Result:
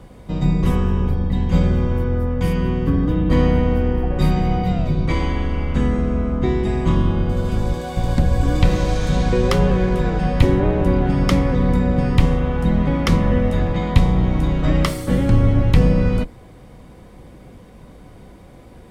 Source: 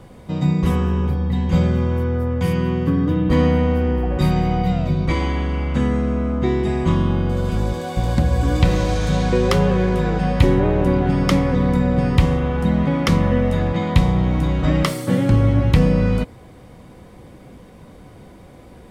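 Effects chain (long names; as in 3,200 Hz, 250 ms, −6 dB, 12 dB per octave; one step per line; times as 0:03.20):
sub-octave generator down 2 octaves, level −2 dB
level −1 dB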